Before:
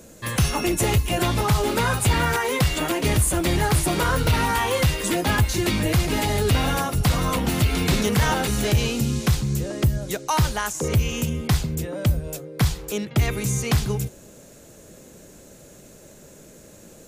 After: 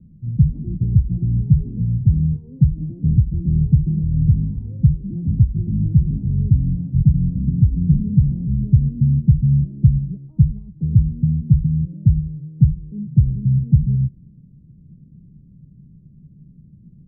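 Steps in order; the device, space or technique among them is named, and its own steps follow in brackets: the neighbour's flat through the wall (LPF 190 Hz 24 dB/oct; bell 150 Hz +8 dB 0.74 oct); gain +3.5 dB

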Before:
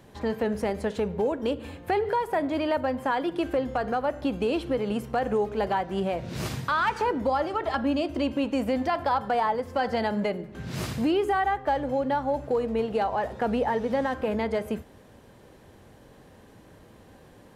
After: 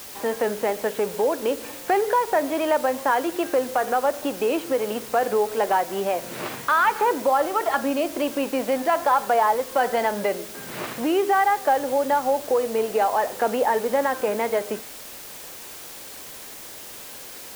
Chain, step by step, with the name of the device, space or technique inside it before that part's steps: wax cylinder (BPF 380–2700 Hz; wow and flutter; white noise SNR 16 dB); gain +6 dB

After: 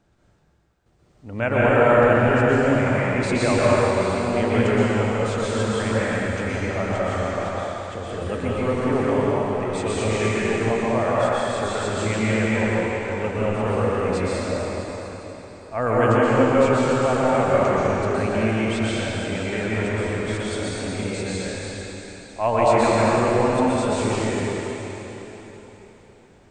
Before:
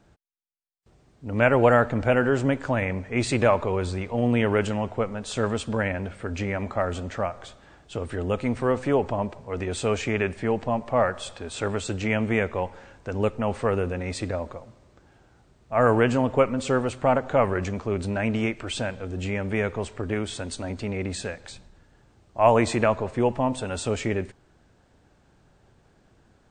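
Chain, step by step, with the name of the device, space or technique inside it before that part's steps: cathedral (reverb RT60 4.0 s, pre-delay 0.114 s, DRR -8.5 dB); gain -4.5 dB

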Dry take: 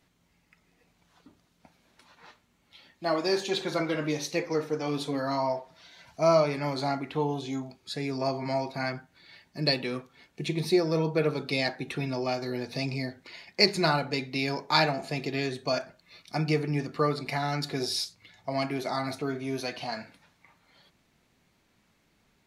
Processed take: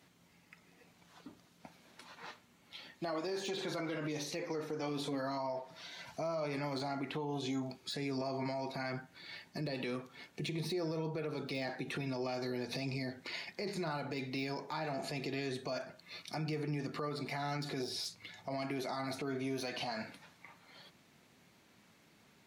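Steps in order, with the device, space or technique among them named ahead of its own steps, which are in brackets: podcast mastering chain (HPF 110 Hz 12 dB/oct; de-esser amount 95%; compressor 3:1, threshold -36 dBFS, peak gain reduction 13 dB; limiter -33.5 dBFS, peak gain reduction 10 dB; gain +4 dB; MP3 96 kbps 48000 Hz)

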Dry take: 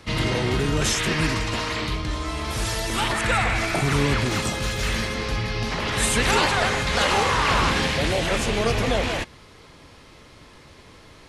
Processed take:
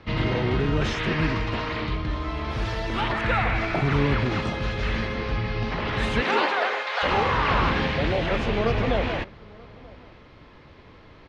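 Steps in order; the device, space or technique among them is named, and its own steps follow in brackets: shout across a valley (air absorption 270 m; outdoor echo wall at 160 m, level -23 dB); 6.2–7.02 HPF 180 Hz -> 650 Hz 24 dB/oct

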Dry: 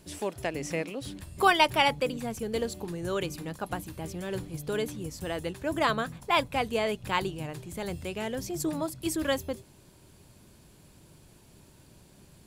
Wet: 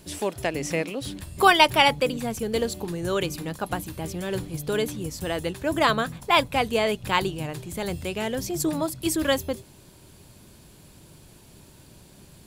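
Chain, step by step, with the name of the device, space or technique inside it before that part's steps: presence and air boost (bell 3700 Hz +2 dB; high shelf 12000 Hz +4.5 dB); gain +5 dB

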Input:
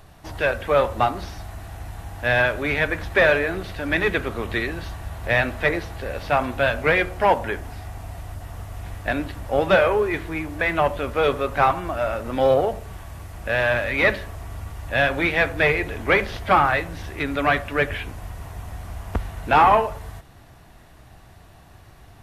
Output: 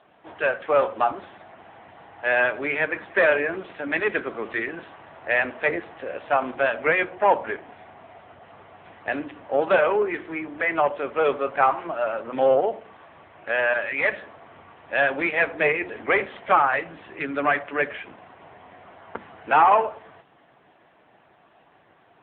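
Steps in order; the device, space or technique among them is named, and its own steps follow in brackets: notches 60/120/180/240/300/360 Hz; 13.79–14.21 dynamic EQ 350 Hz, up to -5 dB, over -34 dBFS, Q 1.2; telephone (BPF 260–3400 Hz; AMR-NB 6.7 kbps 8000 Hz)

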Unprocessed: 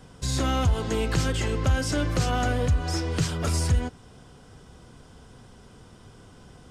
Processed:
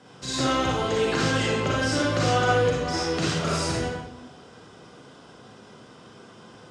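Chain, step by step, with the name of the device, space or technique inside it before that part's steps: supermarket ceiling speaker (BPF 220–6200 Hz; reverb RT60 0.85 s, pre-delay 37 ms, DRR -5 dB)

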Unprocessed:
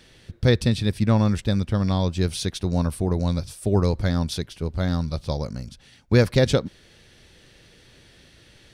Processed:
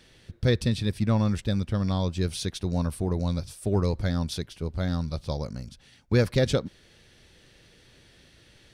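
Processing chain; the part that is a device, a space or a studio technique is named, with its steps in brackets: parallel distortion (in parallel at -10.5 dB: hard clip -16.5 dBFS, distortion -10 dB); on the sum: gain -6 dB

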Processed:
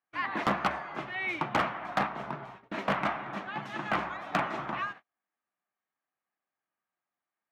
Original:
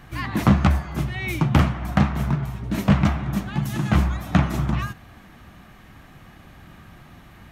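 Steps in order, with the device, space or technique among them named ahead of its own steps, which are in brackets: walkie-talkie (BPF 540–2400 Hz; hard clip -19.5 dBFS, distortion -13 dB; gate -44 dBFS, range -39 dB); 2.06–2.59 dynamic EQ 1900 Hz, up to -5 dB, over -47 dBFS, Q 0.79

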